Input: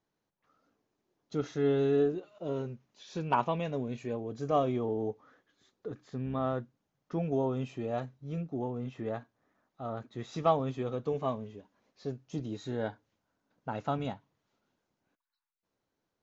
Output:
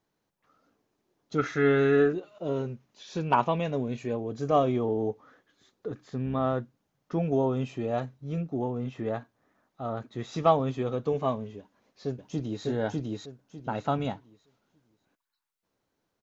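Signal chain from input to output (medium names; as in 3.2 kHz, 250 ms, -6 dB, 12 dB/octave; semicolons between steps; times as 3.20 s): 1.38–2.13 s: high-order bell 1.7 kHz +12 dB 1.2 oct; 11.58–12.65 s: echo throw 600 ms, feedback 25%, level -0.5 dB; trim +4.5 dB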